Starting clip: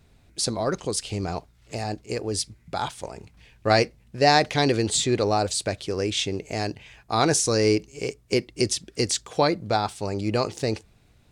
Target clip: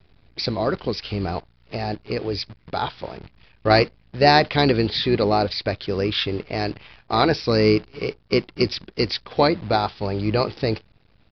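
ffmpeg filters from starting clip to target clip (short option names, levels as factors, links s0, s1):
-filter_complex "[0:a]acrusher=bits=8:dc=4:mix=0:aa=0.000001,aresample=11025,aresample=44100,asplit=2[s0][s1];[s1]asetrate=22050,aresample=44100,atempo=2,volume=0.224[s2];[s0][s2]amix=inputs=2:normalize=0,volume=1.41"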